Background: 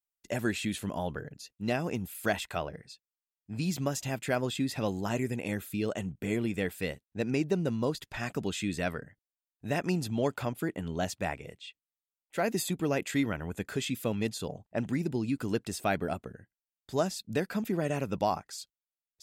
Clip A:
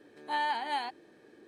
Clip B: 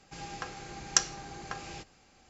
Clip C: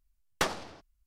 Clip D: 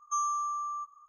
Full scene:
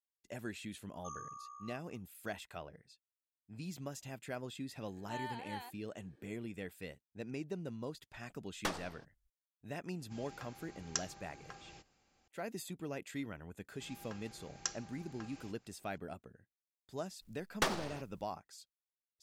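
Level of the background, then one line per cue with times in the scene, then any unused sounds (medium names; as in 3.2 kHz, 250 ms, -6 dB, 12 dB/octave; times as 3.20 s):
background -13 dB
0.93 s: add D -14.5 dB + ring modulator 31 Hz
4.80 s: add A -13 dB
8.24 s: add C -8 dB
9.99 s: add B -12.5 dB
13.69 s: add B -13.5 dB
17.21 s: add C -4 dB + companding laws mixed up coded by mu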